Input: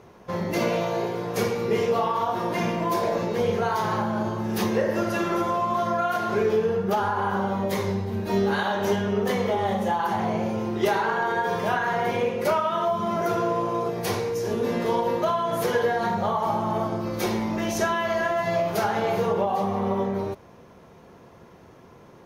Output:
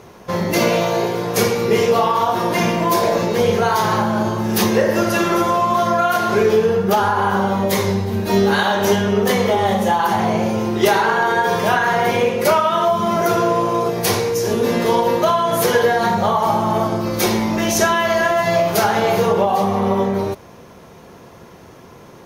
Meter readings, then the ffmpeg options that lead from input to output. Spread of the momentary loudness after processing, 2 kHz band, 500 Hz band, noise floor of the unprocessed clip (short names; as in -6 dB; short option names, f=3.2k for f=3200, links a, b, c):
4 LU, +9.0 dB, +7.5 dB, -50 dBFS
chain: -af "highshelf=f=3.6k:g=7.5,volume=7.5dB"